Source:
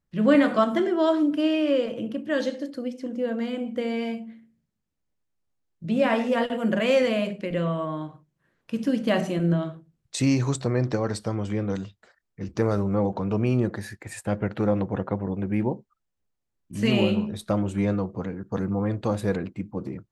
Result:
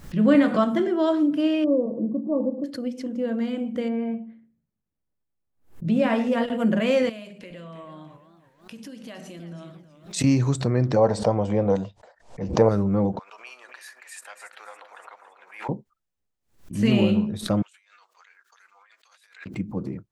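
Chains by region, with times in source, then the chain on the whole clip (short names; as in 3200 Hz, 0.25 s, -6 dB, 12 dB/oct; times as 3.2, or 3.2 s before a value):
1.64–2.64 brick-wall FIR band-pass 160–1200 Hz + low shelf 240 Hz +4.5 dB
3.88–5.85 treble ducked by the level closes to 2200 Hz, closed at -27 dBFS + bell 5200 Hz -11.5 dB 2.3 oct
7.09–10.24 high shelf 2100 Hz +9.5 dB + compressor 4:1, threshold -38 dBFS + warbling echo 0.325 s, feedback 34%, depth 163 cents, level -12.5 dB
10.96–12.69 LPF 8600 Hz 24 dB/oct + band shelf 690 Hz +13 dB 1.3 oct
13.19–15.69 Bessel high-pass 1400 Hz, order 4 + echo with dull and thin repeats by turns 0.14 s, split 1200 Hz, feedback 68%, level -8.5 dB
17.62–19.46 Bessel high-pass 2400 Hz, order 4 + high shelf 6800 Hz -4 dB + negative-ratio compressor -57 dBFS
whole clip: dynamic EQ 170 Hz, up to +6 dB, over -36 dBFS, Q 0.74; backwards sustainer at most 150 dB/s; gain -2 dB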